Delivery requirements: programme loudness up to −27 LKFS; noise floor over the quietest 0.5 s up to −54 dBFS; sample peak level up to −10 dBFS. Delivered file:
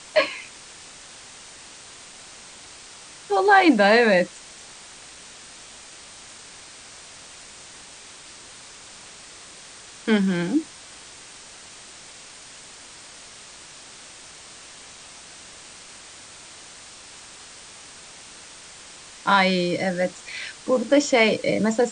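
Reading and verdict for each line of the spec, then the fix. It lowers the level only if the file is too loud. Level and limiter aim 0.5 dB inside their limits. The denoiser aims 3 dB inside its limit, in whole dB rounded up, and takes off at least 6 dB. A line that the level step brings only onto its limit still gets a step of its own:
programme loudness −20.5 LKFS: out of spec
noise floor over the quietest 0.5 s −44 dBFS: out of spec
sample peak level −4.5 dBFS: out of spec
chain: broadband denoise 6 dB, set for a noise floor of −44 dBFS
level −7 dB

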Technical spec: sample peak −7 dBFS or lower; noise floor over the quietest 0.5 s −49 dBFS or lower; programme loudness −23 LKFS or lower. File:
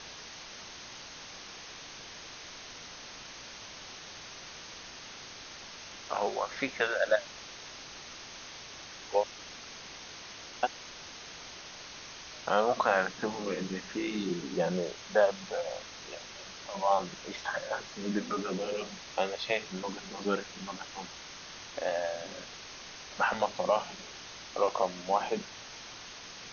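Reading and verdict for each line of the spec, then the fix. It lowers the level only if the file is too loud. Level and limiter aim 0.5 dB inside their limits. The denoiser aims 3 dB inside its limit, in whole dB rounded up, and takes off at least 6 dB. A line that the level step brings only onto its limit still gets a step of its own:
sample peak −11.5 dBFS: in spec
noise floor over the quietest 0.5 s −47 dBFS: out of spec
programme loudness −35.0 LKFS: in spec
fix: broadband denoise 6 dB, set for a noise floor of −47 dBFS

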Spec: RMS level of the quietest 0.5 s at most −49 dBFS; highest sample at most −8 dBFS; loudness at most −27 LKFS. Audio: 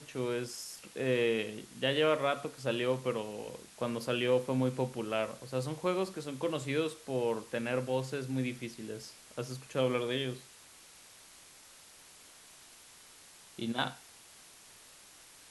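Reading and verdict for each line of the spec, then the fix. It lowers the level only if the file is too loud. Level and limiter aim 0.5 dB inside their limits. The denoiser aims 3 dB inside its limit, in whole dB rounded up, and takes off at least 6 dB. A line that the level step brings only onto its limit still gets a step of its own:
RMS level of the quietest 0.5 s −56 dBFS: in spec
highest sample −16.0 dBFS: in spec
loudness −34.0 LKFS: in spec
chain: no processing needed

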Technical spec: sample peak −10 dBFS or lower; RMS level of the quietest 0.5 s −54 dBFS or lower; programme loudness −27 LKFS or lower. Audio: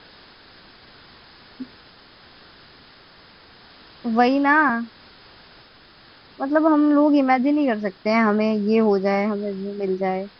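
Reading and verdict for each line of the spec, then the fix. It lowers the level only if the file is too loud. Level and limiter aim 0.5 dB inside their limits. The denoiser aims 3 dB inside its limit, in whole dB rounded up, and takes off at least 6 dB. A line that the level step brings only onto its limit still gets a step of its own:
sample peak −5.0 dBFS: out of spec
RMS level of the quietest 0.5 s −50 dBFS: out of spec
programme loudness −20.0 LKFS: out of spec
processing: level −7.5 dB

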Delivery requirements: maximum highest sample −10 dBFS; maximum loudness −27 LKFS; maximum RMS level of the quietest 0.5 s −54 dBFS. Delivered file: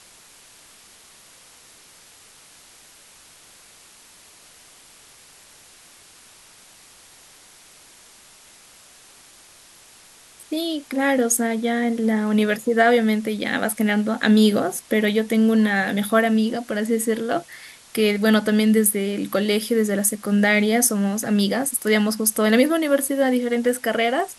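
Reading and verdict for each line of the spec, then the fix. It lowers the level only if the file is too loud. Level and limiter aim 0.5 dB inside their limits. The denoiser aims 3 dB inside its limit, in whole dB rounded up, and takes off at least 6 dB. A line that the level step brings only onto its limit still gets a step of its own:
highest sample −4.0 dBFS: out of spec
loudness −20.0 LKFS: out of spec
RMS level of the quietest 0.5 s −49 dBFS: out of spec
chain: level −7.5 dB

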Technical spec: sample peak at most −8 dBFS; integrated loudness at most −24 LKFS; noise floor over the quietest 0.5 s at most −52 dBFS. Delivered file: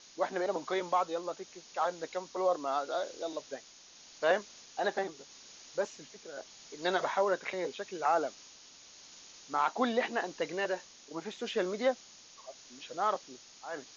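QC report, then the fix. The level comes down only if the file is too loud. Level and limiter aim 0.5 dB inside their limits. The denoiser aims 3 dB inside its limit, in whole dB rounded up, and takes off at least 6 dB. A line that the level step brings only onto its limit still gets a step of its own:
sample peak −17.0 dBFS: in spec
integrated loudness −34.0 LKFS: in spec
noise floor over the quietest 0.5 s −56 dBFS: in spec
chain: no processing needed

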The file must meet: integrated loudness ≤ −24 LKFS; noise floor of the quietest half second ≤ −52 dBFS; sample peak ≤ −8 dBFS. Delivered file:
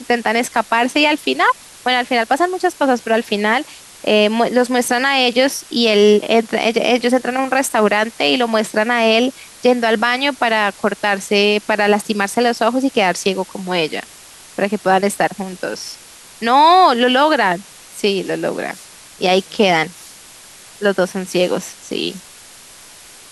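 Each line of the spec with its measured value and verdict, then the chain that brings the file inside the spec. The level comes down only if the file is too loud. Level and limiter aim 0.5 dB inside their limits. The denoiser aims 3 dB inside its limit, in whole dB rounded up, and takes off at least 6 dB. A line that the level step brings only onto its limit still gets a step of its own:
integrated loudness −16.0 LKFS: out of spec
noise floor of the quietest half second −41 dBFS: out of spec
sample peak −2.5 dBFS: out of spec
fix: broadband denoise 6 dB, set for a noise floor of −41 dBFS
level −8.5 dB

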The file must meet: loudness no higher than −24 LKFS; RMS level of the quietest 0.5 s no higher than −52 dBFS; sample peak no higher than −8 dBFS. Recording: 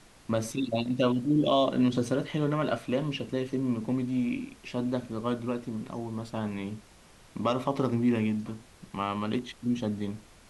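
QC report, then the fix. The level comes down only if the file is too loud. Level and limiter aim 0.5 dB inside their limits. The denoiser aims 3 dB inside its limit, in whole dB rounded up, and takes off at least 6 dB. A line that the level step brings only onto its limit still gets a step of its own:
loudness −30.0 LKFS: in spec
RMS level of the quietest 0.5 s −55 dBFS: in spec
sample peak −13.0 dBFS: in spec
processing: no processing needed

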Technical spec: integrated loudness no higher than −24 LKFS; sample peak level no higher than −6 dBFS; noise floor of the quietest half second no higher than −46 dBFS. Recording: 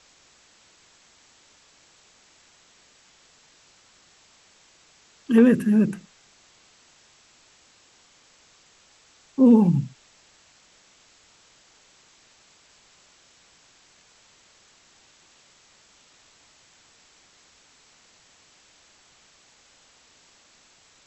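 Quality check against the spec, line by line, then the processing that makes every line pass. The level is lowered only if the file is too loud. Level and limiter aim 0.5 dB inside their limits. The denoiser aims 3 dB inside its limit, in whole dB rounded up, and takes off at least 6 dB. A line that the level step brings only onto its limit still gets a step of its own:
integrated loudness −19.5 LKFS: out of spec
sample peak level −5.5 dBFS: out of spec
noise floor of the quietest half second −58 dBFS: in spec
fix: level −5 dB

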